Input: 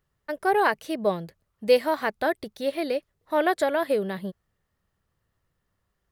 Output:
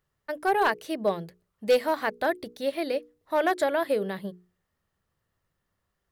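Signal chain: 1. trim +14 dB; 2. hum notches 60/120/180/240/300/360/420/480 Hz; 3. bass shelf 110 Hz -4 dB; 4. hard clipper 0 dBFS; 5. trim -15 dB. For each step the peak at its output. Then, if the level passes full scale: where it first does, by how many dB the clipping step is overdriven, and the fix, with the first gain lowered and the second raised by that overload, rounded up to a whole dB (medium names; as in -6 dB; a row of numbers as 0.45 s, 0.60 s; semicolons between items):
+6.0 dBFS, +6.0 dBFS, +5.5 dBFS, 0.0 dBFS, -15.0 dBFS; step 1, 5.5 dB; step 1 +8 dB, step 5 -9 dB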